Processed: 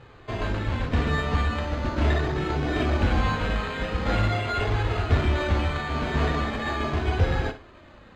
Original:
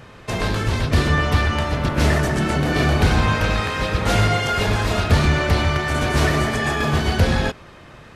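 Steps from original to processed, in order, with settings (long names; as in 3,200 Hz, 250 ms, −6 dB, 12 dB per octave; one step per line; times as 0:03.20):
flanger 0.41 Hz, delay 2.3 ms, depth 2.3 ms, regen −28%
bad sample-rate conversion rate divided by 8×, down none, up hold
high-frequency loss of the air 180 metres
on a send: flutter between parallel walls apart 9.7 metres, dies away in 0.29 s
on the sum: level −2 dB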